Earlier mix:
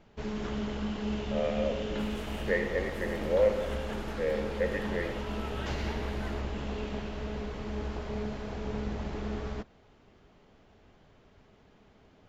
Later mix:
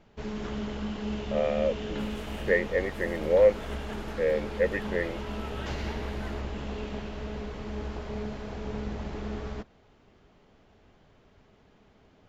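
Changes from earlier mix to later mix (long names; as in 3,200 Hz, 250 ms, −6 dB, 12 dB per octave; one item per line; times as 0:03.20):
speech +6.5 dB
reverb: off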